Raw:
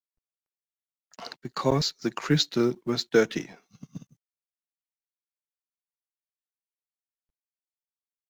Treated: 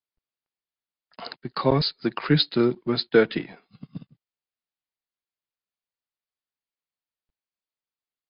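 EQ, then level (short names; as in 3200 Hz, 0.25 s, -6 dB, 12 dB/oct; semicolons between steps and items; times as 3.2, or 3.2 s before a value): brick-wall FIR low-pass 5100 Hz; +3.0 dB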